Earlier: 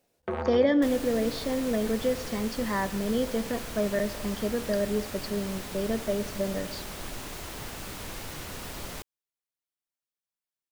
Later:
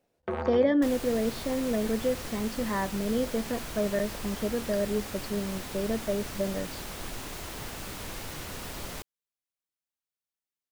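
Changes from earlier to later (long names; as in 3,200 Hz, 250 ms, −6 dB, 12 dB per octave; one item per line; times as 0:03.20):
speech: add high-shelf EQ 3,300 Hz −9 dB
reverb: off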